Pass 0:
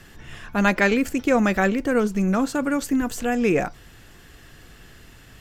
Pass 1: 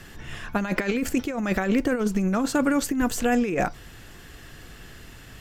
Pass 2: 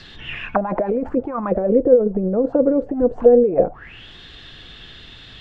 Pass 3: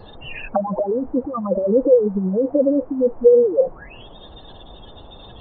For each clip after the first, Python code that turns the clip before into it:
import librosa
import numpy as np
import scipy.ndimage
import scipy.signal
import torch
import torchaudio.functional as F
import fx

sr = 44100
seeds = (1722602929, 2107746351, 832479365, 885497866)

y1 = fx.over_compress(x, sr, threshold_db=-22.0, ratio=-0.5)
y2 = fx.envelope_lowpass(y1, sr, base_hz=500.0, top_hz=4500.0, q=7.9, full_db=-20.0, direction='down')
y3 = fx.spec_expand(y2, sr, power=3.0)
y3 = fx.dmg_noise_band(y3, sr, seeds[0], low_hz=56.0, high_hz=890.0, level_db=-45.0)